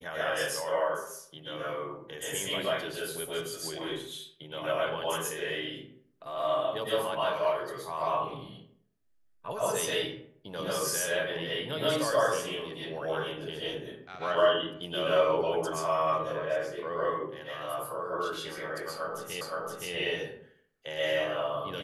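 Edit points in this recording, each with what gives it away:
19.41 s: repeat of the last 0.52 s

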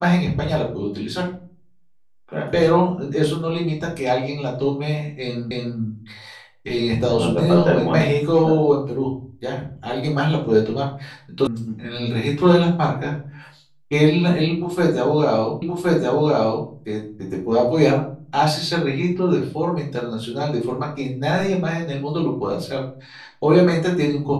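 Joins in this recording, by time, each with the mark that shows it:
5.51 s: repeat of the last 0.29 s
11.47 s: sound stops dead
15.62 s: repeat of the last 1.07 s

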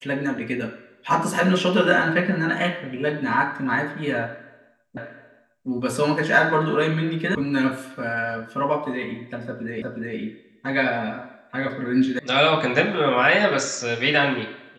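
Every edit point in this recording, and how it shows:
4.97 s: repeat of the last 0.71 s
7.35 s: sound stops dead
9.82 s: repeat of the last 0.36 s
12.19 s: sound stops dead

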